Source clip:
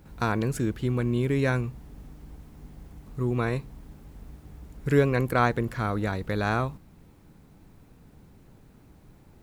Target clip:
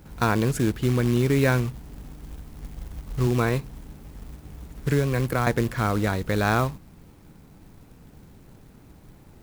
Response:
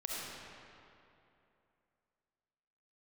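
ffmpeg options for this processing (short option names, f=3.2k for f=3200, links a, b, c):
-filter_complex "[0:a]asettb=1/sr,asplit=3[a][b][c];[a]atrim=end=2.124[d];[b]atrim=start=2.12:end=3.27,asetpts=PTS-STARTPTS,afade=t=in:d=0.004:c=qsin,afade=t=out:st=1.146:d=0.004:c=qsin,asubboost=boost=5:cutoff=120[e];[c]atrim=start=3.266[f];[d][e]acrossfade=d=0.004:c1=hsin:c2=qsin[g];[g][f]acrossfade=d=0.004:c1=qsin:c2=hsin,asettb=1/sr,asplit=3[h][i][j];[h]atrim=end=4.694[k];[i]atrim=start=4.69:end=5.47,asetpts=PTS-STARTPTS,afade=t=in:d=0.004:c=qsin,afade=t=out:st=0.776:d=0.004:c=qsin,acrossover=split=140[l][m];[m]acompressor=threshold=-28dB:ratio=3[n];[l][n]amix=inputs=2:normalize=0[o];[j]atrim=start=5.466[p];[k][o]acrossfade=d=0.004:c1=hsin:c2=qsin[q];[q][p]acrossfade=d=0.004:c1=qsin:c2=hsin,acrusher=bits=4:mode=log:mix=0:aa=0.000001,volume=4dB"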